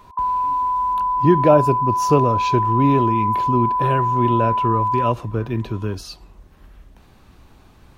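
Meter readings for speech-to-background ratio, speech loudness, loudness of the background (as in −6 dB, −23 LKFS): 0.0 dB, −20.5 LKFS, −20.5 LKFS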